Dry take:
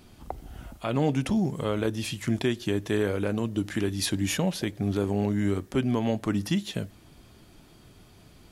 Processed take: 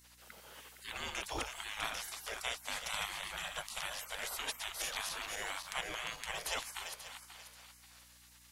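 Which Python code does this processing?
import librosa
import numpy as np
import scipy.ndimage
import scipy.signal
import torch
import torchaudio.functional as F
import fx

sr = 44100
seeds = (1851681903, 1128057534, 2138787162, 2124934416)

y = fx.reverse_delay_fb(x, sr, ms=268, feedback_pct=56, wet_db=-7)
y = fx.spec_gate(y, sr, threshold_db=-25, keep='weak')
y = fx.add_hum(y, sr, base_hz=60, snr_db=25)
y = y * librosa.db_to_amplitude(3.0)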